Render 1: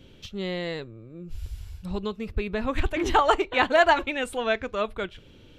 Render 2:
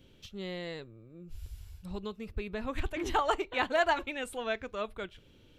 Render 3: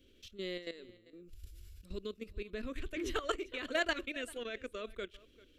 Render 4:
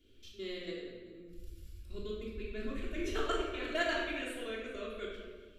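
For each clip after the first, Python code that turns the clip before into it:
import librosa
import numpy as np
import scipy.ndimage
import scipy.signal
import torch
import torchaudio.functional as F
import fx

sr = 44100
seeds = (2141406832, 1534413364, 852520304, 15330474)

y1 = fx.high_shelf(x, sr, hz=9300.0, db=8.0)
y1 = y1 * 10.0 ** (-8.5 / 20.0)
y2 = fx.level_steps(y1, sr, step_db=13)
y2 = fx.fixed_phaser(y2, sr, hz=350.0, stages=4)
y2 = y2 + 10.0 ** (-21.0 / 20.0) * np.pad(y2, (int(393 * sr / 1000.0), 0))[:len(y2)]
y2 = y2 * 10.0 ** (2.5 / 20.0)
y3 = fx.room_shoebox(y2, sr, seeds[0], volume_m3=940.0, walls='mixed', distance_m=3.2)
y3 = y3 * 10.0 ** (-6.0 / 20.0)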